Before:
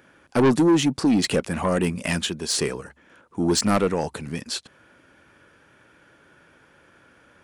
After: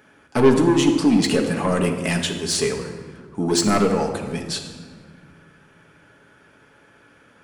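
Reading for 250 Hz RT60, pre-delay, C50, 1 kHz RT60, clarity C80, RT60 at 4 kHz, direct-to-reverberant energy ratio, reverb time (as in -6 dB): 2.5 s, 5 ms, 6.5 dB, 1.6 s, 8.5 dB, 1.1 s, 1.5 dB, 1.7 s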